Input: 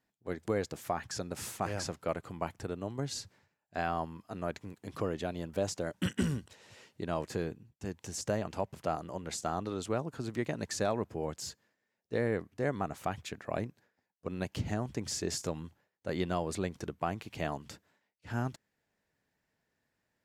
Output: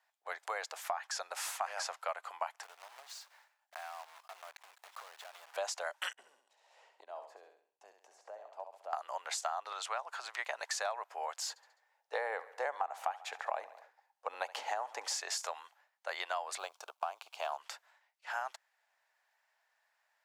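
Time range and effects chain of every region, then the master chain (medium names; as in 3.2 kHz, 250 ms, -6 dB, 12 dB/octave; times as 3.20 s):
2.63–5.54 s: block-companded coder 3-bit + compression 4:1, threshold -50 dBFS
6.13–8.93 s: FFT filter 140 Hz 0 dB, 760 Hz -16 dB, 1.4 kHz -26 dB + feedback delay 67 ms, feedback 30%, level -7.5 dB + three bands compressed up and down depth 100%
9.72–10.45 s: frequency weighting A + upward compressor, threshold -41 dBFS
11.49–15.17 s: small resonant body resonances 260/480/810 Hz, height 10 dB, ringing for 20 ms + feedback delay 69 ms, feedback 56%, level -20 dB
16.58–17.58 s: companding laws mixed up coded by A + peaking EQ 1.9 kHz -15 dB 0.43 oct
whole clip: steep high-pass 720 Hz 36 dB/octave; tilt EQ -2 dB/octave; compression 6:1, threshold -41 dBFS; trim +8 dB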